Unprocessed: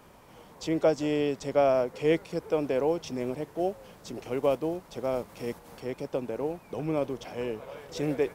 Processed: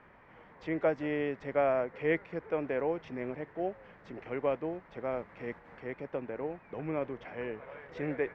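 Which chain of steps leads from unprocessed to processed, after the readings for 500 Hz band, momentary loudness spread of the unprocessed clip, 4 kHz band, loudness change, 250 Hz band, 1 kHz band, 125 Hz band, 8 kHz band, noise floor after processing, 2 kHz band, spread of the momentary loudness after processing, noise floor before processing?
−5.5 dB, 13 LU, below −10 dB, −5.0 dB, −6.0 dB, −4.0 dB, −6.0 dB, below −25 dB, −58 dBFS, +1.5 dB, 12 LU, −54 dBFS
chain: low-pass with resonance 1,900 Hz, resonance Q 3.4
level −6 dB

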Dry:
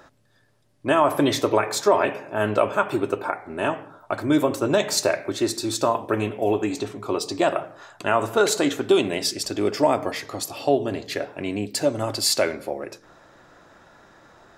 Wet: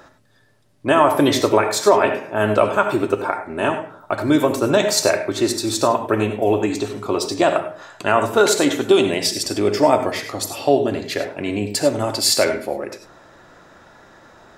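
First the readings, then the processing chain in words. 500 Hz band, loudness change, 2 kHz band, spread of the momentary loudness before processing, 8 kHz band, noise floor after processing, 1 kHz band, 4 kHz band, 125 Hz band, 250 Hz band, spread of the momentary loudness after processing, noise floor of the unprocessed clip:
+4.5 dB, +4.5 dB, +4.5 dB, 10 LU, +4.5 dB, −52 dBFS, +4.5 dB, +4.5 dB, +4.5 dB, +4.5 dB, 10 LU, −59 dBFS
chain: reverb whose tail is shaped and stops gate 120 ms rising, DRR 8 dB
level +4 dB

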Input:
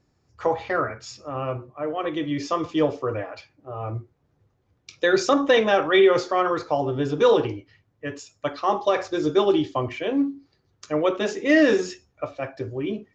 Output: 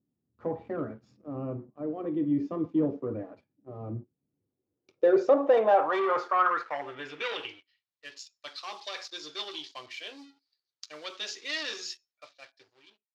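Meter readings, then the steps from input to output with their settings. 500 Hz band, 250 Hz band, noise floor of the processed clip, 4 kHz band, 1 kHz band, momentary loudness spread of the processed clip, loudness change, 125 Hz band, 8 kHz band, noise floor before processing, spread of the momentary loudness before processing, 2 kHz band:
−7.5 dB, −8.5 dB, below −85 dBFS, −5.5 dB, −4.5 dB, 20 LU, −6.5 dB, −9.0 dB, can't be measured, −69 dBFS, 16 LU, −9.5 dB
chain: fade-out on the ending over 1.30 s
leveller curve on the samples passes 2
band-pass filter sweep 230 Hz → 4,400 Hz, 0:04.21–0:07.96
level −3 dB

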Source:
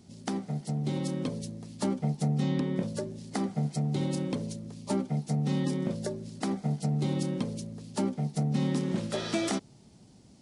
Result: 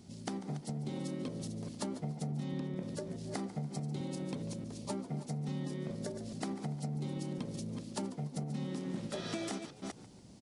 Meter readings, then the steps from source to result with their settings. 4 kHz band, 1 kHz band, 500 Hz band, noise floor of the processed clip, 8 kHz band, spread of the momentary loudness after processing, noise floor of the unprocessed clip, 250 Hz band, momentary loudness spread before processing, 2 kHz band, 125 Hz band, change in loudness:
−6.5 dB, −7.0 dB, −7.5 dB, −54 dBFS, −5.5 dB, 3 LU, −56 dBFS, −8.0 dB, 7 LU, −7.5 dB, −8.5 dB, −8.5 dB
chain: delay that plays each chunk backwards 211 ms, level −10 dB
downward compressor 4 to 1, threshold −37 dBFS, peak gain reduction 13 dB
echo with shifted repeats 144 ms, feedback 35%, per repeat +92 Hz, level −16.5 dB

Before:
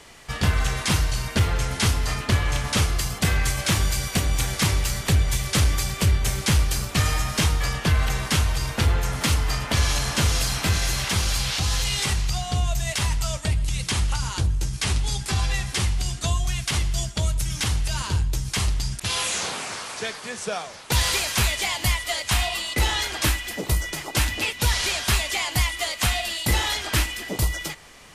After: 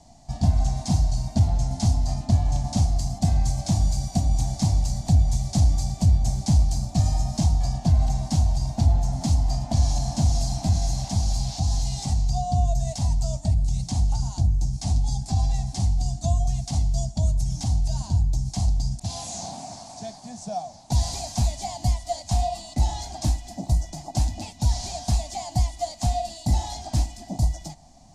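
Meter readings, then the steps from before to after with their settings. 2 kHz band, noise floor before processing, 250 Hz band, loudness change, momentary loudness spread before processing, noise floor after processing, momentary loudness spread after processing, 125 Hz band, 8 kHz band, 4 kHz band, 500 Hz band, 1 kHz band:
below −20 dB, −38 dBFS, +1.5 dB, −1.0 dB, 4 LU, −44 dBFS, 7 LU, +2.0 dB, −7.0 dB, −11.5 dB, −2.5 dB, −2.0 dB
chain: drawn EQ curve 260 Hz 0 dB, 460 Hz −25 dB, 710 Hz +4 dB, 1,300 Hz −27 dB, 3,000 Hz −24 dB, 4,400 Hz −10 dB, 6,900 Hz −7 dB, 13,000 Hz −24 dB
level +2 dB

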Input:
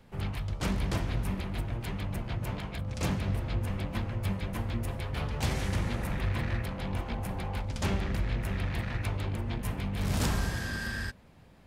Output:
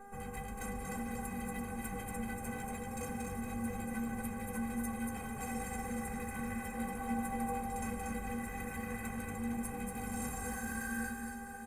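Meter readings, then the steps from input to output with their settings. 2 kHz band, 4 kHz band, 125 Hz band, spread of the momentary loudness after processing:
−4.5 dB, −16.5 dB, −15.0 dB, 3 LU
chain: variable-slope delta modulation 64 kbit/s
double-tracking delay 14 ms −10.5 dB
speech leveller 2 s
brickwall limiter −27 dBFS, peak gain reduction 9.5 dB
high-shelf EQ 6,800 Hz +10 dB
single-tap delay 235 ms −3.5 dB
hum with harmonics 400 Hz, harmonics 4, −46 dBFS −4 dB per octave
flat-topped bell 4,100 Hz −15 dB 1.2 octaves
stiff-string resonator 230 Hz, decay 0.21 s, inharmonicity 0.03
feedback delay with all-pass diffusion 504 ms, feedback 58%, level −10.5 dB
level +8 dB

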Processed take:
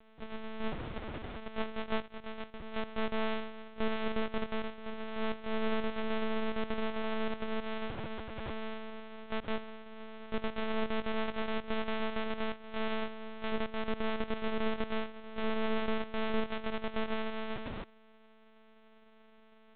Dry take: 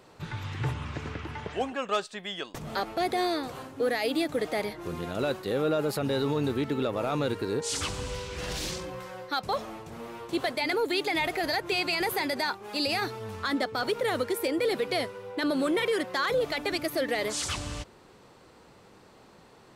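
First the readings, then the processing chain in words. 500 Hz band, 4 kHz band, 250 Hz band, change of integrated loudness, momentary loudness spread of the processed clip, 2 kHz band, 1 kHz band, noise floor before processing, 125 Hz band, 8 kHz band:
−8.0 dB, −11.0 dB, −5.0 dB, −8.0 dB, 9 LU, −8.0 dB, −7.5 dB, −55 dBFS, −11.5 dB, below −40 dB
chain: samples sorted by size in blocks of 128 samples
one-pitch LPC vocoder at 8 kHz 220 Hz
level −4 dB

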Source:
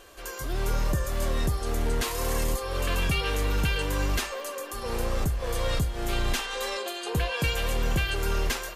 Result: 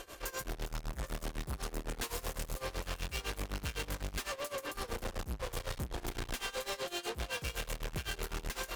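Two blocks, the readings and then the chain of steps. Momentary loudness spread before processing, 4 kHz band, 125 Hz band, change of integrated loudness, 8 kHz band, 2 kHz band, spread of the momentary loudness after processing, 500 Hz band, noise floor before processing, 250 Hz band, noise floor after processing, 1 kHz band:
5 LU, −9.0 dB, −13.5 dB, −11.0 dB, −8.0 dB, −10.0 dB, 3 LU, −10.5 dB, −38 dBFS, −11.5 dB, −53 dBFS, −9.5 dB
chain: tube saturation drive 43 dB, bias 0.7
amplitude tremolo 7.9 Hz, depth 90%
level +9 dB

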